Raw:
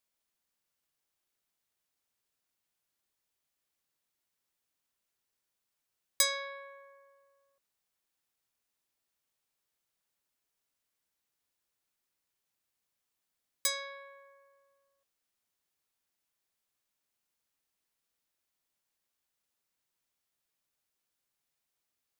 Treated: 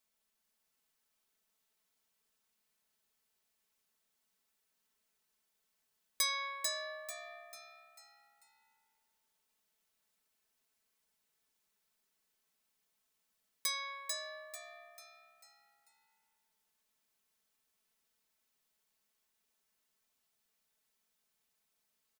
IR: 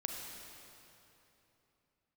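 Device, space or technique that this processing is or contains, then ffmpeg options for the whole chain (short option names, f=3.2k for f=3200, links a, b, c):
clipper into limiter: -filter_complex "[0:a]asoftclip=type=hard:threshold=-14.5dB,alimiter=limit=-22.5dB:level=0:latency=1:release=252,asplit=6[a][b][c][d][e][f];[b]adelay=443,afreqshift=67,volume=-4.5dB[g];[c]adelay=886,afreqshift=134,volume=-12.5dB[h];[d]adelay=1329,afreqshift=201,volume=-20.4dB[i];[e]adelay=1772,afreqshift=268,volume=-28.4dB[j];[f]adelay=2215,afreqshift=335,volume=-36.3dB[k];[a][g][h][i][j][k]amix=inputs=6:normalize=0,aecho=1:1:4.6:0.75"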